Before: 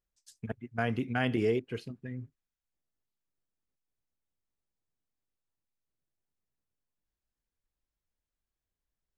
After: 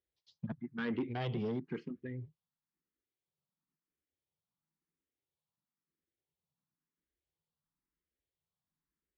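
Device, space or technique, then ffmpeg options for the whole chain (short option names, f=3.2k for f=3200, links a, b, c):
barber-pole phaser into a guitar amplifier: -filter_complex "[0:a]asplit=2[a][b];[b]afreqshift=0.98[c];[a][c]amix=inputs=2:normalize=1,asoftclip=type=tanh:threshold=-32.5dB,highpass=77,equalizer=f=110:t=q:w=4:g=-5,equalizer=f=160:t=q:w=4:g=8,equalizer=f=340:t=q:w=4:g=3,equalizer=f=670:t=q:w=4:g=-6,equalizer=f=1.5k:t=q:w=4:g=-4,equalizer=f=2.6k:t=q:w=4:g=-7,lowpass=f=3.8k:w=0.5412,lowpass=f=3.8k:w=1.3066,volume=2.5dB"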